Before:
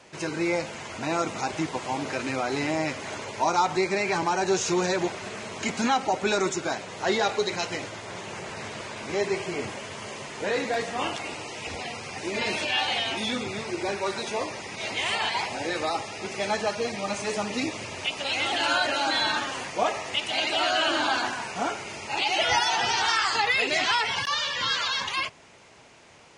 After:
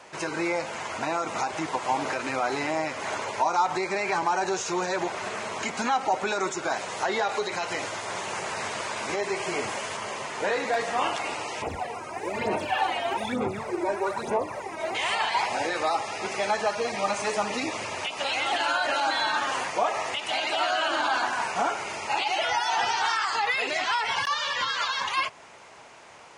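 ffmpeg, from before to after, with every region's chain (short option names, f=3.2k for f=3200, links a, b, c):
-filter_complex "[0:a]asettb=1/sr,asplit=3[a][b][c];[a]atrim=end=6.714[d];[b]atrim=start=6.71:end=9.97,asetpts=PTS-STARTPTS,afade=t=in:d=0.004:c=qsin,afade=t=out:st=3.256:d=0.004:c=qsin,acrossover=split=3300[e][f];[f]acompressor=threshold=-40dB:ratio=4:attack=1:release=60[g];[e][g]amix=inputs=2:normalize=0,highshelf=f=4.2k:g=7[h];[c]atrim=start=9.966[i];[d][h]acrossfade=d=0.004:c1=hsin:c2=qsin[j];[j][i]acrossfade=d=0.004:c1=qsin:c2=hsin,asettb=1/sr,asplit=3[k][l][m];[k]atrim=end=11.624[n];[l]atrim=start=11.62:end=14.95,asetpts=PTS-STARTPTS,afade=t=in:d=0.004:c=qsin,afade=t=out:st=3.326:d=0.004:c=qsin,equalizer=f=4.2k:t=o:w=2.6:g=-14.5,aphaser=in_gain=1:out_gain=1:delay=3.2:decay=0.65:speed=1.1:type=sinusoidal[o];[m]atrim=start=14.946[p];[n][o]acrossfade=d=0.004:c1=hsin:c2=qsin[q];[q][p]acrossfade=d=0.004:c1=qsin:c2=hsin,highshelf=f=5.7k:g=9,alimiter=limit=-19.5dB:level=0:latency=1:release=148,equalizer=f=1k:w=0.5:g=11.5,volume=-4.5dB"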